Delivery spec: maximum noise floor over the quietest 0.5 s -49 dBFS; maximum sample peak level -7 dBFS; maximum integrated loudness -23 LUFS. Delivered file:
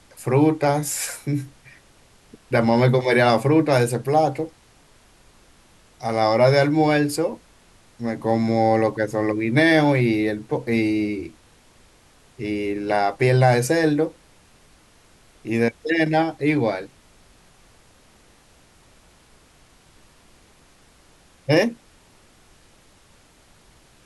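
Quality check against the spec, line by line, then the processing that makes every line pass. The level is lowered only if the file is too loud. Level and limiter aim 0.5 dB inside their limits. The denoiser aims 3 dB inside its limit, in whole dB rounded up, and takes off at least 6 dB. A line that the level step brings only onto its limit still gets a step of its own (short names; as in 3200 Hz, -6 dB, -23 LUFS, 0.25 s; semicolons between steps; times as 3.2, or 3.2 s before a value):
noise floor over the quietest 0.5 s -54 dBFS: OK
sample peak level -5.5 dBFS: fail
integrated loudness -20.5 LUFS: fail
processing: gain -3 dB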